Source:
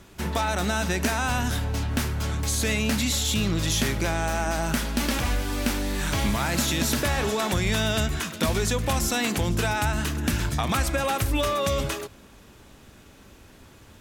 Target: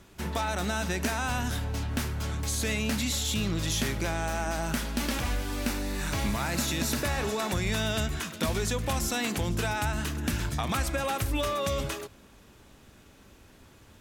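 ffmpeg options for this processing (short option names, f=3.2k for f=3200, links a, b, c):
-filter_complex "[0:a]asettb=1/sr,asplit=3[a][b][c];[a]atrim=end=5.664[d];[b]atrim=start=5.66:end=7.8,asetpts=PTS-STARTPTS,afade=t=in:d=0.004:c=qsin,afade=t=out:st=2.136:d=0.004:c=qsin,bandreject=f=3.2k:w=13[e];[c]atrim=start=7.796[f];[d][e]acrossfade=d=0.004:c1=hsin:c2=qsin[g];[g][f]acrossfade=d=0.004:c1=qsin:c2=hsin,volume=-4.5dB"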